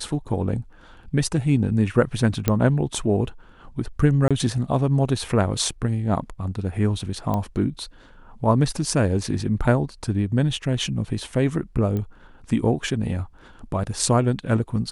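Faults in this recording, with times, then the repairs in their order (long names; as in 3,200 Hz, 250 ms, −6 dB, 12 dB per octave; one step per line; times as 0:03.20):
0:02.48: click −5 dBFS
0:04.28–0:04.31: drop-out 26 ms
0:07.34: click −13 dBFS
0:11.97: click −17 dBFS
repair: click removal
repair the gap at 0:04.28, 26 ms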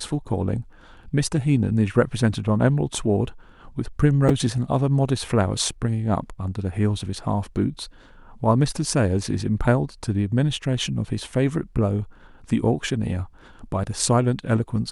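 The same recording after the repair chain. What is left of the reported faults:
none of them is left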